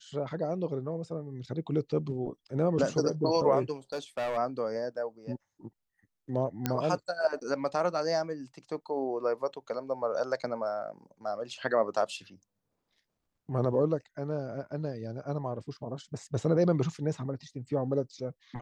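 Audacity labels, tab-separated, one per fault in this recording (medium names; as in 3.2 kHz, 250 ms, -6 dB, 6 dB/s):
3.930000	4.380000	clipped -28.5 dBFS
6.660000	6.660000	pop -13 dBFS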